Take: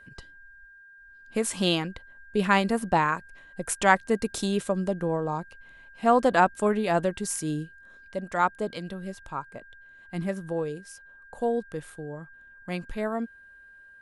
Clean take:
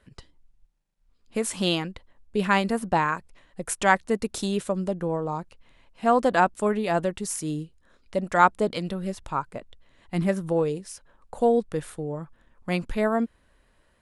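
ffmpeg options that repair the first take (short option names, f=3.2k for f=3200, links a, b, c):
-af "bandreject=f=1.6k:w=30,asetnsamples=n=441:p=0,asendcmd='8.08 volume volume 6dB',volume=0dB"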